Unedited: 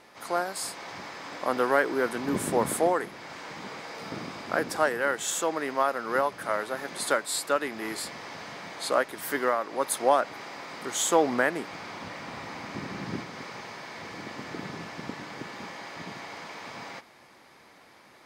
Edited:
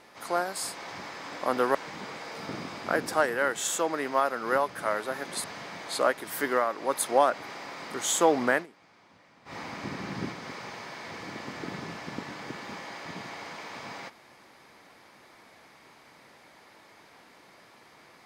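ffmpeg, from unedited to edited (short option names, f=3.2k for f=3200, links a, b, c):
-filter_complex "[0:a]asplit=5[a][b][c][d][e];[a]atrim=end=1.752[f];[b]atrim=start=3.378:end=7.072[g];[c]atrim=start=8.348:end=11.57,asetpts=PTS-STARTPTS,afade=t=out:st=3.092:d=0.13:c=qsin:silence=0.105925[h];[d]atrim=start=11.57:end=12.36,asetpts=PTS-STARTPTS,volume=-19.5dB[i];[e]atrim=start=12.36,asetpts=PTS-STARTPTS,afade=t=in:d=0.13:c=qsin:silence=0.105925[j];[f][g]acrossfade=d=0.004:c1=hsin:c2=hsin[k];[h][i][j]concat=n=3:v=0:a=1[l];[k][l]acrossfade=d=0.004:c1=hsin:c2=hsin"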